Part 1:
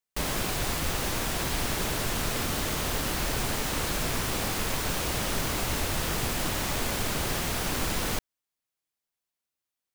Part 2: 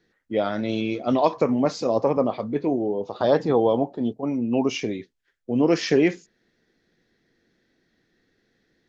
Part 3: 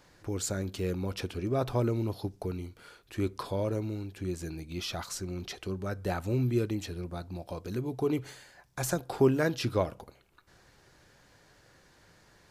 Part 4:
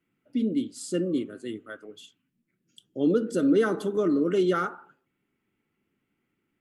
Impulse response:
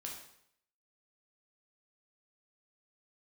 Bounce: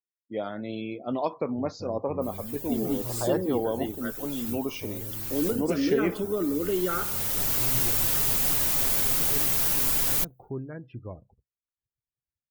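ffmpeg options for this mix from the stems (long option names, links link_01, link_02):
-filter_complex "[0:a]aemphasis=mode=production:type=50fm,aecho=1:1:7.3:0.5,adelay=2050,volume=-5dB[link_01];[1:a]volume=-8.5dB,asplit=2[link_02][link_03];[2:a]bass=frequency=250:gain=8,treble=frequency=4000:gain=-12,adelay=1300,volume=-14.5dB[link_04];[3:a]acompressor=threshold=-32dB:ratio=2,adelay=2350,volume=2.5dB[link_05];[link_03]apad=whole_len=529304[link_06];[link_01][link_06]sidechaincompress=threshold=-41dB:ratio=8:attack=9.3:release=1180[link_07];[link_07][link_02][link_04][link_05]amix=inputs=4:normalize=0,afftdn=noise_reduction=33:noise_floor=-49"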